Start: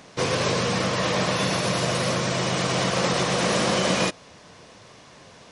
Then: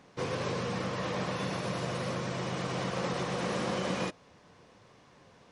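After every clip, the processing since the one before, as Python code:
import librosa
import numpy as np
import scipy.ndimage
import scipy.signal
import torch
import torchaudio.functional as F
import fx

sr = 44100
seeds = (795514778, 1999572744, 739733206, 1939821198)

y = fx.high_shelf(x, sr, hz=2700.0, db=-9.0)
y = fx.notch(y, sr, hz=640.0, q=12.0)
y = y * 10.0 ** (-8.5 / 20.0)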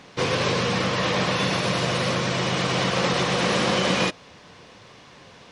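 y = fx.peak_eq(x, sr, hz=3400.0, db=7.0, octaves=1.9)
y = y * 10.0 ** (9.0 / 20.0)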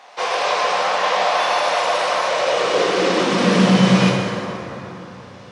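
y = fx.rev_plate(x, sr, seeds[0], rt60_s=3.5, hf_ratio=0.5, predelay_ms=0, drr_db=-2.5)
y = fx.filter_sweep_highpass(y, sr, from_hz=730.0, to_hz=100.0, start_s=2.26, end_s=4.31, q=3.0)
y = y * 10.0 ** (-1.0 / 20.0)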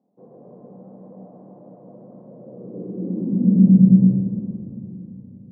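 y = fx.ladder_lowpass(x, sr, hz=260.0, resonance_pct=50)
y = y * 10.0 ** (6.0 / 20.0)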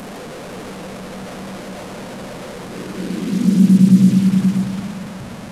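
y = fx.delta_mod(x, sr, bps=64000, step_db=-27.5)
y = y + 10.0 ** (-6.0 / 20.0) * np.pad(y, (int(527 * sr / 1000.0), 0))[:len(y)]
y = y * 10.0 ** (1.5 / 20.0)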